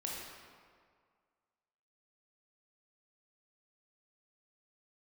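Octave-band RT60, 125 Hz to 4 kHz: 1.8, 1.8, 1.9, 2.0, 1.6, 1.2 s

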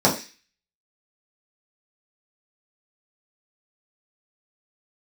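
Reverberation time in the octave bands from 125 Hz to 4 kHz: 0.20, 0.30, 0.30, 0.30, 0.50, 0.50 s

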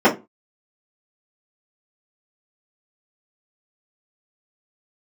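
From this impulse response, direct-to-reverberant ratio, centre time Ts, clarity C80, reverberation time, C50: -9.5 dB, 16 ms, 22.0 dB, 0.25 s, 13.5 dB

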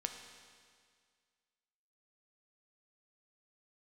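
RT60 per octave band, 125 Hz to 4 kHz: 1.9, 1.9, 1.9, 1.9, 1.9, 1.9 s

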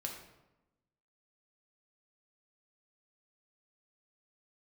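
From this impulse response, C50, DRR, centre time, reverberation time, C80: 5.0 dB, 0.5 dB, 33 ms, 1.0 s, 8.0 dB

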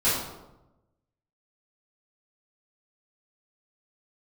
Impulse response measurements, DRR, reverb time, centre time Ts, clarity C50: -13.0 dB, 0.95 s, 64 ms, 0.5 dB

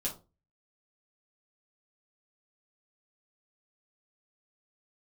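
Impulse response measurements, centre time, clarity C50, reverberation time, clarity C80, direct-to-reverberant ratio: 18 ms, 11.0 dB, 0.30 s, 17.5 dB, -5.0 dB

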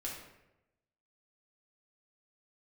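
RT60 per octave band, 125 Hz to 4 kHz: 1.1, 0.95, 1.0, 0.85, 0.80, 0.60 s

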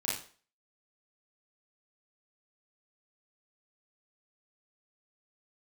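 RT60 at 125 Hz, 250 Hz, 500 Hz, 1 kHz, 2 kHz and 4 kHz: 0.35, 0.40, 0.45, 0.45, 0.40, 0.40 s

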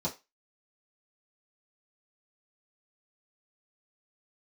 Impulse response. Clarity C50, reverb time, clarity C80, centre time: 15.0 dB, 0.25 s, 22.0 dB, 16 ms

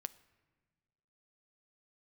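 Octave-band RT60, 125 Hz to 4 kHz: 1.8, 1.8, 1.6, 1.3, 1.3, 0.95 s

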